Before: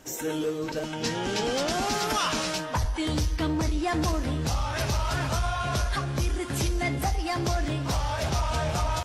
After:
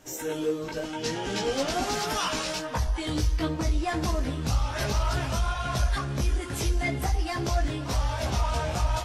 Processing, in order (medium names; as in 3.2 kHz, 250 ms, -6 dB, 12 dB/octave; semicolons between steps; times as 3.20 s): chorus voices 4, 0.75 Hz, delay 17 ms, depth 2.5 ms; trim +1.5 dB